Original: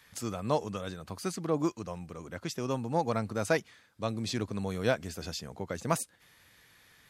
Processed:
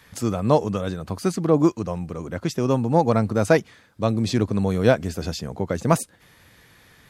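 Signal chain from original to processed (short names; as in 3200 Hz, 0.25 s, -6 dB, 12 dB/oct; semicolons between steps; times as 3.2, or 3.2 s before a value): tilt shelf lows +4 dB, about 940 Hz; gain +9 dB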